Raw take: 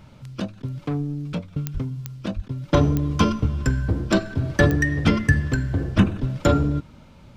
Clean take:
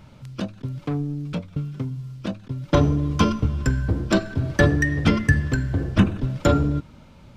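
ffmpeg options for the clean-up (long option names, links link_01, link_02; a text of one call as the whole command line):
ffmpeg -i in.wav -filter_complex "[0:a]adeclick=threshold=4,asplit=3[link_01][link_02][link_03];[link_01]afade=type=out:start_time=1.73:duration=0.02[link_04];[link_02]highpass=frequency=140:width=0.5412,highpass=frequency=140:width=1.3066,afade=type=in:start_time=1.73:duration=0.02,afade=type=out:start_time=1.85:duration=0.02[link_05];[link_03]afade=type=in:start_time=1.85:duration=0.02[link_06];[link_04][link_05][link_06]amix=inputs=3:normalize=0,asplit=3[link_07][link_08][link_09];[link_07]afade=type=out:start_time=2.35:duration=0.02[link_10];[link_08]highpass=frequency=140:width=0.5412,highpass=frequency=140:width=1.3066,afade=type=in:start_time=2.35:duration=0.02,afade=type=out:start_time=2.47:duration=0.02[link_11];[link_09]afade=type=in:start_time=2.47:duration=0.02[link_12];[link_10][link_11][link_12]amix=inputs=3:normalize=0" out.wav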